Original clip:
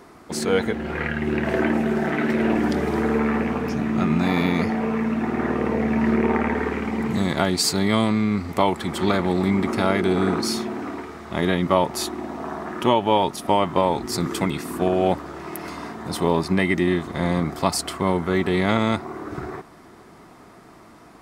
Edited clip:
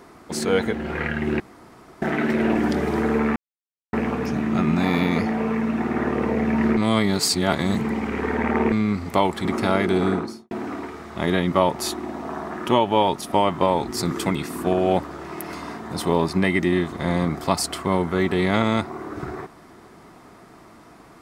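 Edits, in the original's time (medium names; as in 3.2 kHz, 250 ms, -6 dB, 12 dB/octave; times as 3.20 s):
1.40–2.02 s: room tone
3.36 s: insert silence 0.57 s
6.20–8.15 s: reverse
8.88–9.60 s: delete
10.18–10.66 s: studio fade out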